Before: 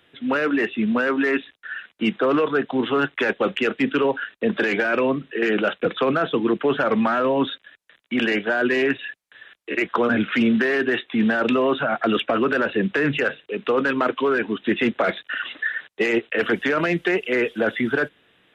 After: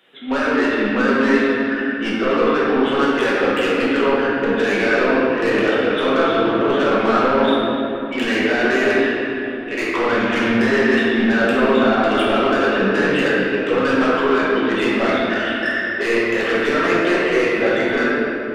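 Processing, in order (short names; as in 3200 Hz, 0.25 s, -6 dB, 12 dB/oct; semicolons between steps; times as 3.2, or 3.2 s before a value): HPF 250 Hz 12 dB/oct; soft clip -20.5 dBFS, distortion -12 dB; shoebox room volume 160 m³, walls hard, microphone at 1.1 m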